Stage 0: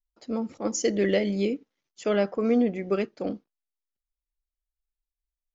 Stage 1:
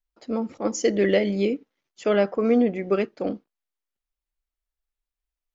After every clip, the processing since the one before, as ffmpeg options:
-af "bass=f=250:g=-3,treble=f=4000:g=-6,volume=1.58"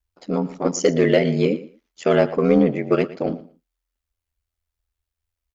-filter_complex "[0:a]aeval=exprs='val(0)*sin(2*PI*42*n/s)':c=same,asplit=2[s0][s1];[s1]volume=8.91,asoftclip=hard,volume=0.112,volume=0.355[s2];[s0][s2]amix=inputs=2:normalize=0,aecho=1:1:115|230:0.141|0.0254,volume=1.68"

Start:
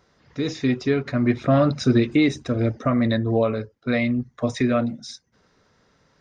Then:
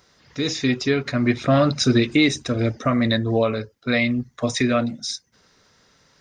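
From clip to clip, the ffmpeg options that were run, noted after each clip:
-af "highshelf=f=2300:g=11.5"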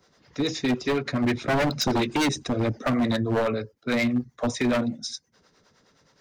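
-filter_complex "[0:a]acrossover=split=140|1100[s0][s1][s2];[s1]acontrast=31[s3];[s0][s3][s2]amix=inputs=3:normalize=0,acrossover=split=400[s4][s5];[s4]aeval=exprs='val(0)*(1-0.7/2+0.7/2*cos(2*PI*9.6*n/s))':c=same[s6];[s5]aeval=exprs='val(0)*(1-0.7/2-0.7/2*cos(2*PI*9.6*n/s))':c=same[s7];[s6][s7]amix=inputs=2:normalize=0,aeval=exprs='0.188*(abs(mod(val(0)/0.188+3,4)-2)-1)':c=same,volume=0.75"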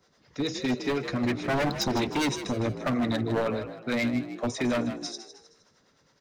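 -filter_complex "[0:a]asplit=5[s0][s1][s2][s3][s4];[s1]adelay=156,afreqshift=56,volume=0.282[s5];[s2]adelay=312,afreqshift=112,volume=0.116[s6];[s3]adelay=468,afreqshift=168,volume=0.0473[s7];[s4]adelay=624,afreqshift=224,volume=0.0195[s8];[s0][s5][s6][s7][s8]amix=inputs=5:normalize=0,volume=0.668"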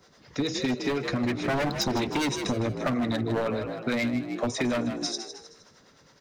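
-af "acompressor=threshold=0.0224:ratio=4,volume=2.37"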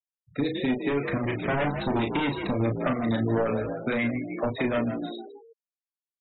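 -filter_complex "[0:a]aresample=8000,aresample=44100,asplit=2[s0][s1];[s1]adelay=35,volume=0.562[s2];[s0][s2]amix=inputs=2:normalize=0,afftfilt=real='re*gte(hypot(re,im),0.0178)':imag='im*gte(hypot(re,im),0.0178)':win_size=1024:overlap=0.75"

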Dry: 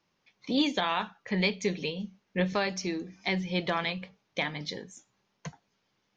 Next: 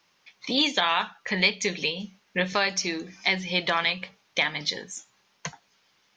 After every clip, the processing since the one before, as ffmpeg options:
-filter_complex "[0:a]tiltshelf=f=640:g=-6.5,asplit=2[s0][s1];[s1]acompressor=threshold=0.0224:ratio=6,volume=1[s2];[s0][s2]amix=inputs=2:normalize=0"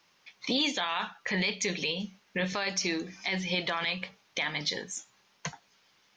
-af "alimiter=limit=0.112:level=0:latency=1:release=26"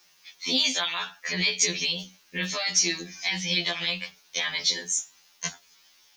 -af "crystalizer=i=5:c=0,afftfilt=real='re*2*eq(mod(b,4),0)':imag='im*2*eq(mod(b,4),0)':win_size=2048:overlap=0.75"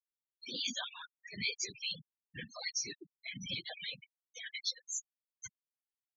-af "afftfilt=real='hypot(re,im)*cos(2*PI*random(0))':imag='hypot(re,im)*sin(2*PI*random(1))':win_size=512:overlap=0.75,afftfilt=real='re*gte(hypot(re,im),0.0447)':imag='im*gte(hypot(re,im),0.0447)':win_size=1024:overlap=0.75,tremolo=f=2.6:d=0.56,volume=0.668"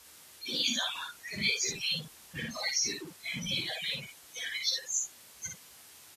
-filter_complex "[0:a]aeval=exprs='val(0)+0.5*0.00422*sgn(val(0))':c=same,asplit=2[s0][s1];[s1]aecho=0:1:13|58:0.447|0.668[s2];[s0][s2]amix=inputs=2:normalize=0,volume=1.58" -ar 44100 -c:a libvorbis -b:a 32k

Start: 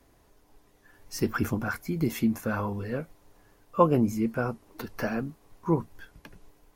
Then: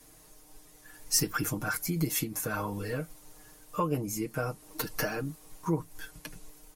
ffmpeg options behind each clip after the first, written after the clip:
-af "acompressor=threshold=0.0224:ratio=2.5,equalizer=f=9900:t=o:w=2:g=15,aecho=1:1:6.5:0.82"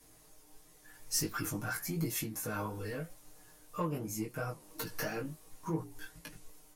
-filter_complex "[0:a]flanger=delay=8.1:depth=9.1:regen=83:speed=0.93:shape=sinusoidal,asplit=2[s0][s1];[s1]volume=50.1,asoftclip=hard,volume=0.02,volume=0.398[s2];[s0][s2]amix=inputs=2:normalize=0,flanger=delay=17.5:depth=2.1:speed=2.9"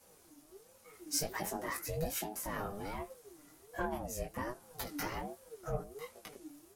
-af "aeval=exprs='val(0)*sin(2*PI*410*n/s+410*0.3/1.3*sin(2*PI*1.3*n/s))':c=same,volume=1.12"

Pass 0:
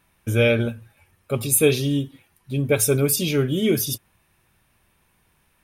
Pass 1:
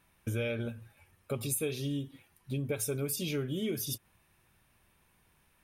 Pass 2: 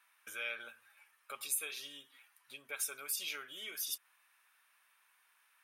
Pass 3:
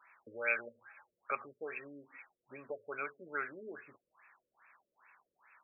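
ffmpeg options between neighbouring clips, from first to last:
-af "acompressor=threshold=0.0447:ratio=5,volume=0.596"
-af "highpass=f=1300:t=q:w=1.6,volume=0.841"
-af "afftfilt=real='re*lt(b*sr/1024,560*pow(2700/560,0.5+0.5*sin(2*PI*2.4*pts/sr)))':imag='im*lt(b*sr/1024,560*pow(2700/560,0.5+0.5*sin(2*PI*2.4*pts/sr)))':win_size=1024:overlap=0.75,volume=3.35"

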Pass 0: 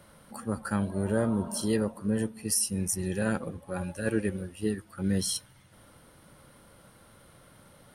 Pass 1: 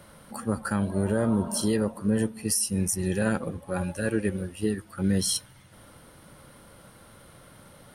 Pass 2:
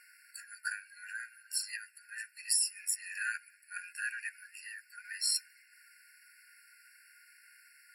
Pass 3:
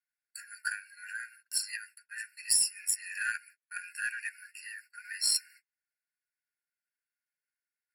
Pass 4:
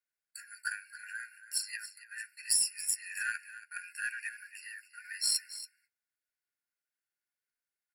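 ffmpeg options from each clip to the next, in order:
-af "alimiter=limit=0.112:level=0:latency=1:release=159,volume=1.68"
-af "afftfilt=real='re*eq(mod(floor(b*sr/1024/1400),2),1)':imag='im*eq(mod(floor(b*sr/1024/1400),2),1)':win_size=1024:overlap=0.75"
-af "aeval=exprs='0.15*(cos(1*acos(clip(val(0)/0.15,-1,1)))-cos(1*PI/2))+0.00211*(cos(4*acos(clip(val(0)/0.15,-1,1)))-cos(4*PI/2))+0.00422*(cos(7*acos(clip(val(0)/0.15,-1,1)))-cos(7*PI/2))':c=same,agate=range=0.0126:threshold=0.00158:ratio=16:detection=peak,volume=1.58"
-af "aecho=1:1:279:0.2,volume=0.794"

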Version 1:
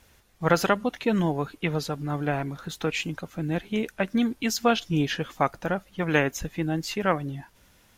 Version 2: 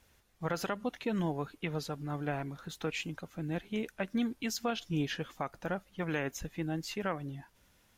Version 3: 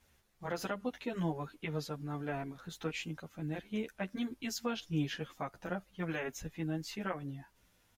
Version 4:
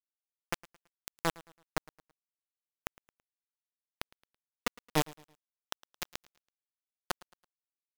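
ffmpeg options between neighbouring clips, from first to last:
-af "alimiter=limit=0.188:level=0:latency=1:release=123,volume=0.398"
-filter_complex "[0:a]asplit=2[s0][s1];[s1]adelay=10.5,afreqshift=-0.59[s2];[s0][s2]amix=inputs=2:normalize=1"
-af "asoftclip=type=tanh:threshold=0.0376,acrusher=bits=4:mix=0:aa=0.000001,aecho=1:1:110|220|330:0.0794|0.0294|0.0109,volume=2.51"

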